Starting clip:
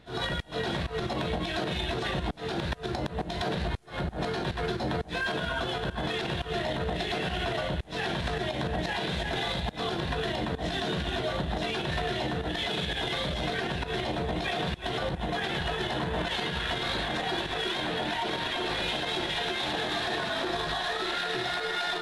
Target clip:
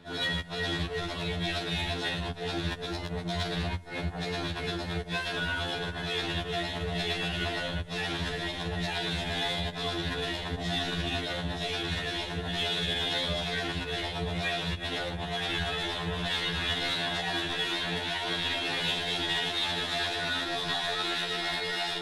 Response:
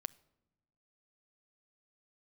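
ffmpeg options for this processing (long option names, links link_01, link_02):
-filter_complex "[0:a]acrossover=split=100|1800[link_01][link_02][link_03];[link_02]alimiter=level_in=7dB:limit=-24dB:level=0:latency=1:release=44,volume=-7dB[link_04];[link_01][link_04][link_03]amix=inputs=3:normalize=0,aeval=exprs='0.112*(cos(1*acos(clip(val(0)/0.112,-1,1)))-cos(1*PI/2))+0.00794*(cos(2*acos(clip(val(0)/0.112,-1,1)))-cos(2*PI/2))+0.00398*(cos(5*acos(clip(val(0)/0.112,-1,1)))-cos(5*PI/2))+0.00158*(cos(6*acos(clip(val(0)/0.112,-1,1)))-cos(6*PI/2))+0.00224*(cos(8*acos(clip(val(0)/0.112,-1,1)))-cos(8*PI/2))':channel_layout=same,tremolo=f=26:d=0.261[link_05];[1:a]atrim=start_sample=2205,atrim=end_sample=6174[link_06];[link_05][link_06]afir=irnorm=-1:irlink=0,afftfilt=real='re*2*eq(mod(b,4),0)':imag='im*2*eq(mod(b,4),0)':win_size=2048:overlap=0.75,volume=7.5dB"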